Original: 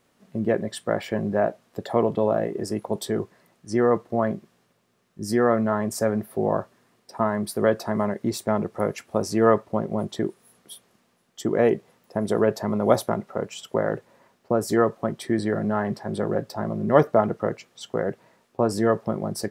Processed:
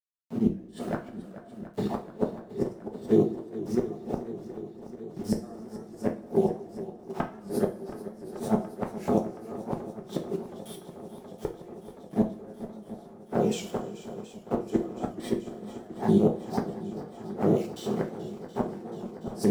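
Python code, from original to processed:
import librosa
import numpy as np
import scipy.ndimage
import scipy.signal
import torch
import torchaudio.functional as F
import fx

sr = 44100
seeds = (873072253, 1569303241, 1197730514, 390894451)

p1 = fx.spec_steps(x, sr, hold_ms=100)
p2 = fx.dynamic_eq(p1, sr, hz=140.0, q=1.1, threshold_db=-38.0, ratio=4.0, max_db=-3)
p3 = fx.level_steps(p2, sr, step_db=14)
p4 = p2 + F.gain(torch.from_numpy(p3), -3.0).numpy()
p5 = fx.auto_swell(p4, sr, attack_ms=126.0)
p6 = np.where(np.abs(p5) >= 10.0 ** (-43.5 / 20.0), p5, 0.0)
p7 = fx.small_body(p6, sr, hz=(210.0, 340.0, 720.0), ring_ms=35, db=13)
p8 = fx.gate_flip(p7, sr, shuts_db=-11.0, range_db=-33)
p9 = fx.env_flanger(p8, sr, rest_ms=8.7, full_db=-20.0)
p10 = p9 + fx.echo_swing(p9, sr, ms=723, ratio=1.5, feedback_pct=73, wet_db=-15, dry=0)
p11 = fx.rev_double_slope(p10, sr, seeds[0], early_s=0.32, late_s=2.3, knee_db=-21, drr_db=1.5)
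y = fx.record_warp(p11, sr, rpm=78.0, depth_cents=100.0)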